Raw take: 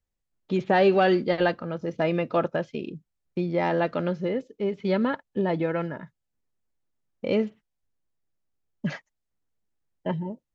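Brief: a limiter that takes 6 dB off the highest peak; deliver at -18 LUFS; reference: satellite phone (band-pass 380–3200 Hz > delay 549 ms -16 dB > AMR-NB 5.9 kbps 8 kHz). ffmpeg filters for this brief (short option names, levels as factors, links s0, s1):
-af "alimiter=limit=0.178:level=0:latency=1,highpass=380,lowpass=3200,aecho=1:1:549:0.158,volume=4.73" -ar 8000 -c:a libopencore_amrnb -b:a 5900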